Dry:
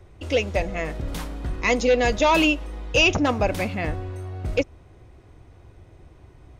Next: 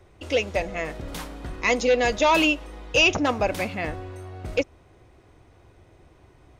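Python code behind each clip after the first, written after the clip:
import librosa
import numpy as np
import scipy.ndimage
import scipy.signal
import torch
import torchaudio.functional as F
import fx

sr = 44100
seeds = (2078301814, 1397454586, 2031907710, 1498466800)

y = fx.low_shelf(x, sr, hz=200.0, db=-8.0)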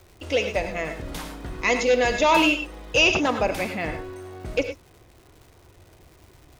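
y = fx.rev_gated(x, sr, seeds[0], gate_ms=130, shape='rising', drr_db=6.5)
y = fx.dmg_crackle(y, sr, seeds[1], per_s=400.0, level_db=-44.0)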